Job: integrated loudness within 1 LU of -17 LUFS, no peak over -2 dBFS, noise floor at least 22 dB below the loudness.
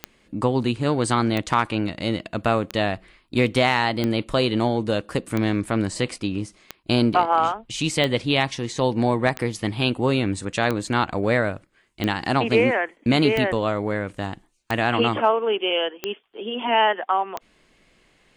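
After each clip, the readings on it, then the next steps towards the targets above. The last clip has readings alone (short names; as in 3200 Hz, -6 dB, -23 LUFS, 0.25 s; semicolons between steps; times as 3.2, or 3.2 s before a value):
clicks 14; loudness -22.5 LUFS; peak -6.5 dBFS; loudness target -17.0 LUFS
-> de-click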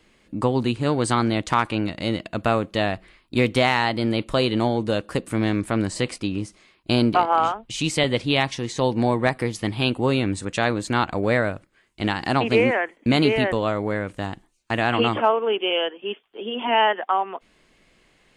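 clicks 0; loudness -22.5 LUFS; peak -6.5 dBFS; loudness target -17.0 LUFS
-> gain +5.5 dB; limiter -2 dBFS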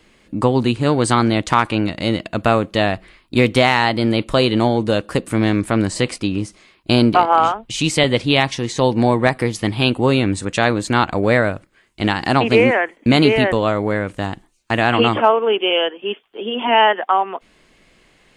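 loudness -17.0 LUFS; peak -2.0 dBFS; noise floor -56 dBFS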